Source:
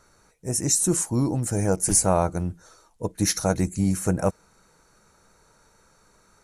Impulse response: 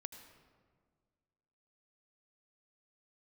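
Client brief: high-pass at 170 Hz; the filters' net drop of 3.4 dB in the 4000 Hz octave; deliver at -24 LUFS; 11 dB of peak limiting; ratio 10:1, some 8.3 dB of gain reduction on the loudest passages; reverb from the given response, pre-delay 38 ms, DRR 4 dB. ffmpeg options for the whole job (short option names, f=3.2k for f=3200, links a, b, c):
-filter_complex "[0:a]highpass=170,equalizer=f=4k:t=o:g=-5.5,acompressor=threshold=-25dB:ratio=10,alimiter=limit=-24dB:level=0:latency=1,asplit=2[a][b];[1:a]atrim=start_sample=2205,adelay=38[c];[b][c]afir=irnorm=-1:irlink=0,volume=0dB[d];[a][d]amix=inputs=2:normalize=0,volume=9dB"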